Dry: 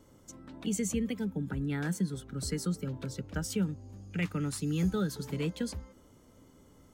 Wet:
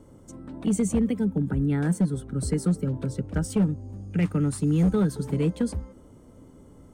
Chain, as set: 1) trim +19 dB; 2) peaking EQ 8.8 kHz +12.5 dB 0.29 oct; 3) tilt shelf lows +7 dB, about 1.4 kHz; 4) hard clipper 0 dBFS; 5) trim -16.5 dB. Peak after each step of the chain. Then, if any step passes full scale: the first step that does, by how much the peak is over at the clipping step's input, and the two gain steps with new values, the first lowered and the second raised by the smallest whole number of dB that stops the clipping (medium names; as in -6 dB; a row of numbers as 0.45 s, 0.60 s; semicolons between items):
-1.0 dBFS, +2.0 dBFS, +5.5 dBFS, 0.0 dBFS, -16.5 dBFS; step 2, 5.5 dB; step 1 +13 dB, step 5 -10.5 dB